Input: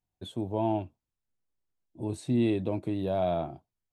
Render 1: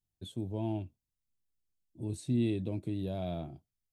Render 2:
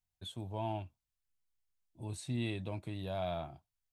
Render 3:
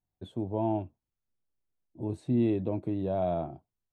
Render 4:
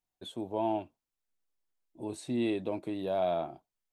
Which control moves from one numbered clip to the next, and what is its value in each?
peaking EQ, frequency: 950 Hz, 350 Hz, 16 kHz, 82 Hz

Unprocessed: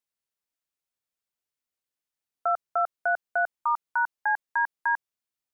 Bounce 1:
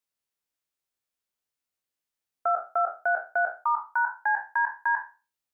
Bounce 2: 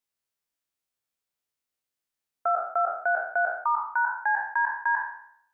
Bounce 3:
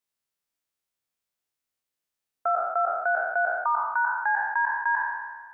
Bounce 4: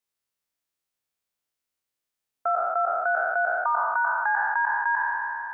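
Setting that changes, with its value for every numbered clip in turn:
spectral sustain, RT60: 0.31 s, 0.67 s, 1.45 s, 3.08 s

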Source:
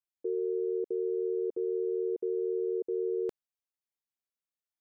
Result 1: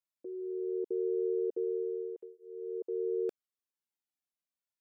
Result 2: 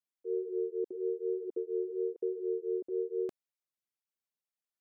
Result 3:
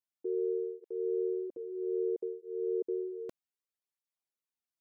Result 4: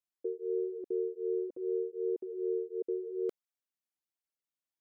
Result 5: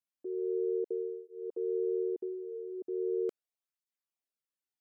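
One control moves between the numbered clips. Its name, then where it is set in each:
cancelling through-zero flanger, nulls at: 0.21 Hz, 2.1 Hz, 0.62 Hz, 1.3 Hz, 0.39 Hz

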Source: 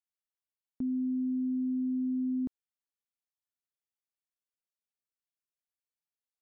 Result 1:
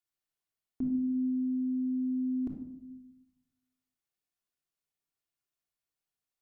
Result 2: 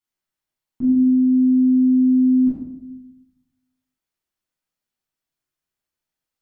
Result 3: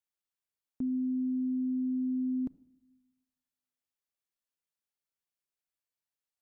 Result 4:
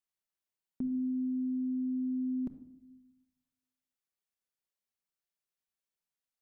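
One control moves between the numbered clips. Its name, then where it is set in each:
simulated room, microphone at: 3.3 m, 11 m, 0.32 m, 1.1 m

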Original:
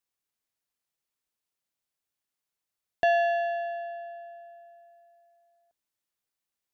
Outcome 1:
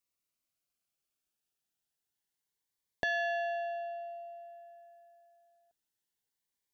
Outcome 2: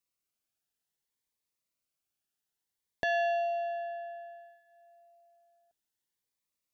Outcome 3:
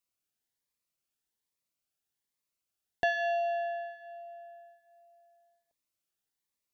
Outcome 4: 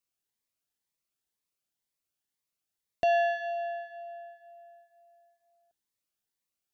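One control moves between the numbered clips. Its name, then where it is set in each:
Shepard-style phaser, rate: 0.26 Hz, 0.6 Hz, 1.2 Hz, 2 Hz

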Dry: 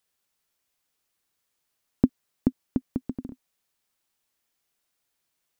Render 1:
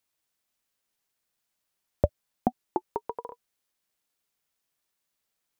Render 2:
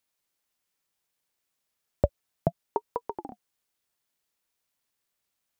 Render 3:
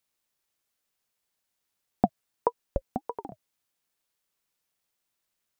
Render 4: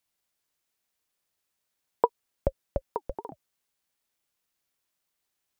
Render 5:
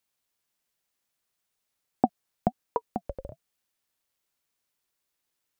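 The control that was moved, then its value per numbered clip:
ring modulator with a swept carrier, at: 0.3 Hz, 0.68 Hz, 1.6 Hz, 3.4 Hz, 1.1 Hz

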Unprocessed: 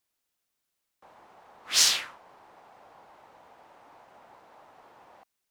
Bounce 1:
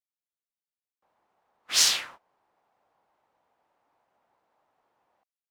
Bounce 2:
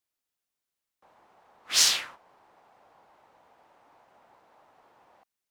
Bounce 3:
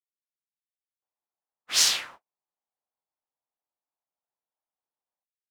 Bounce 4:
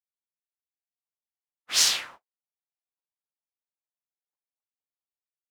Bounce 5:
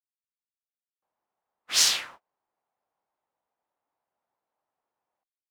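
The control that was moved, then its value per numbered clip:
gate, range: -19 dB, -6 dB, -45 dB, -58 dB, -32 dB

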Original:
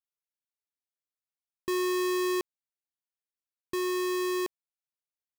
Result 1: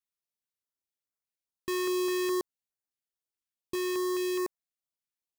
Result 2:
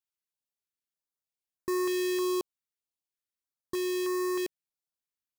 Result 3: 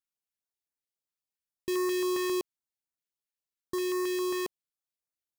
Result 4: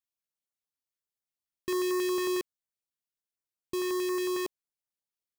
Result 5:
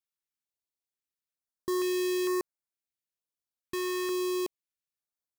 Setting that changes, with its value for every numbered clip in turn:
step-sequenced notch, rate: 4.8 Hz, 3.2 Hz, 7.4 Hz, 11 Hz, 2.2 Hz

